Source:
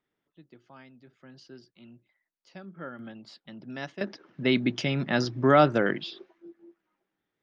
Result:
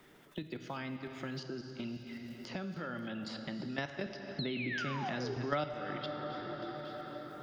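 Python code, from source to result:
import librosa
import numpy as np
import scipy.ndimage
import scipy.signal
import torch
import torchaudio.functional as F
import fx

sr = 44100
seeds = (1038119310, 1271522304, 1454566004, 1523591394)

p1 = fx.spec_paint(x, sr, seeds[0], shape='fall', start_s=4.39, length_s=0.95, low_hz=370.0, high_hz=4300.0, level_db=-32.0)
p2 = p1 + fx.echo_thinned(p1, sr, ms=274, feedback_pct=39, hz=340.0, wet_db=-19.5, dry=0)
p3 = fx.level_steps(p2, sr, step_db=18)
p4 = fx.rev_plate(p3, sr, seeds[1], rt60_s=2.3, hf_ratio=0.7, predelay_ms=0, drr_db=6.5)
p5 = fx.band_squash(p4, sr, depth_pct=100)
y = p5 * librosa.db_to_amplitude(-1.0)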